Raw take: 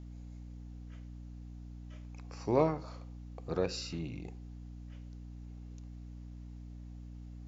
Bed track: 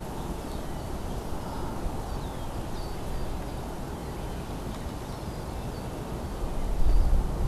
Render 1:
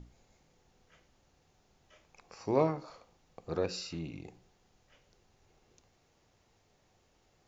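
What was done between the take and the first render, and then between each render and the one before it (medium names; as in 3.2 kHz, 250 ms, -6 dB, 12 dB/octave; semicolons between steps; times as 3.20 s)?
hum notches 60/120/180/240/300 Hz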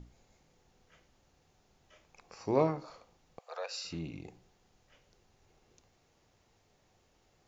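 3.39–3.85 s: steep high-pass 560 Hz 48 dB/octave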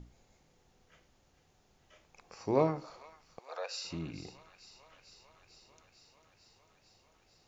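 feedback echo behind a high-pass 447 ms, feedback 78%, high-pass 1.4 kHz, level -13.5 dB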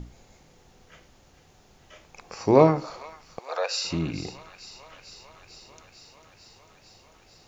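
trim +12 dB; peak limiter -3 dBFS, peak gain reduction 1 dB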